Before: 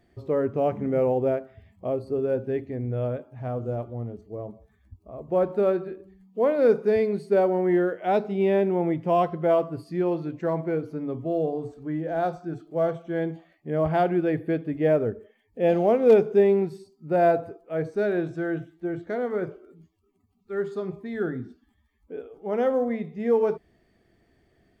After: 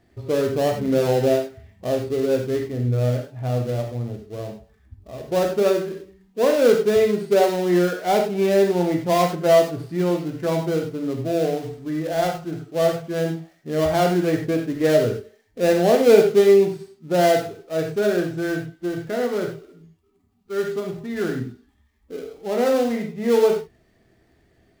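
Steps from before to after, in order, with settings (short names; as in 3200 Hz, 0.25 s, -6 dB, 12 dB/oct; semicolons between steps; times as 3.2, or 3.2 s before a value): switching dead time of 0.13 ms; non-linear reverb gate 0.12 s flat, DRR 2 dB; gain +2.5 dB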